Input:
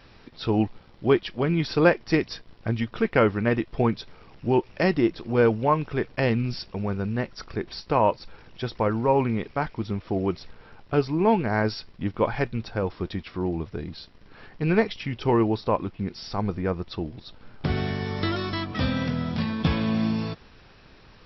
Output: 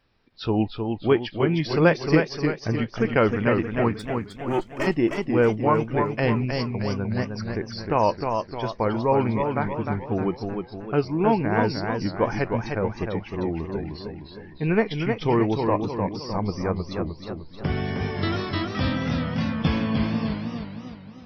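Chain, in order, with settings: 3.99–4.87 minimum comb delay 3.2 ms; spectral noise reduction 16 dB; warbling echo 0.308 s, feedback 49%, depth 114 cents, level -5 dB

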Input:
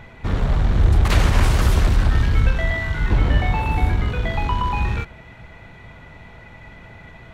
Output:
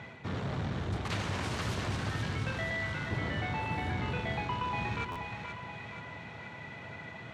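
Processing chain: HPF 100 Hz 24 dB/oct; high shelf 3700 Hz +7.5 dB; reverse; compressor 4:1, threshold -30 dBFS, peak gain reduction 12 dB; reverse; air absorption 72 m; split-band echo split 540 Hz, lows 0.211 s, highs 0.477 s, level -6.5 dB; stuck buffer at 5.11, samples 512, times 3; gain -3 dB

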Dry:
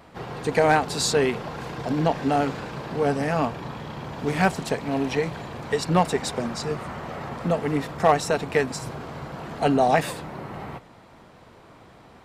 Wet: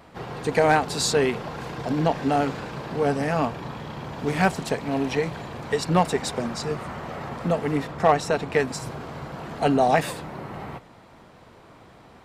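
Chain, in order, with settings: 7.82–8.59 high shelf 6100 Hz -> 9300 Hz -8 dB

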